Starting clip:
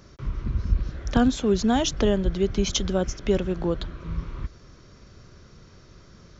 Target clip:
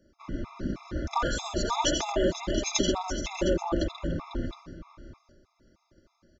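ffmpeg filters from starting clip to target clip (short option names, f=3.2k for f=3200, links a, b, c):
-filter_complex "[0:a]agate=range=-17dB:threshold=-44dB:ratio=16:detection=peak,afftfilt=real='re*lt(hypot(re,im),0.355)':imag='im*lt(hypot(re,im),0.355)':win_size=1024:overlap=0.75,aecho=1:1:3.4:0.57,acrossover=split=140|1000[a][b][c];[b]acontrast=83[d];[a][d][c]amix=inputs=3:normalize=0,aecho=1:1:85|88|134|496|713:0.355|0.422|0.376|0.251|0.237,afftfilt=real='re*gt(sin(2*PI*3.2*pts/sr)*(1-2*mod(floor(b*sr/1024/680),2)),0)':imag='im*gt(sin(2*PI*3.2*pts/sr)*(1-2*mod(floor(b*sr/1024/680),2)),0)':win_size=1024:overlap=0.75"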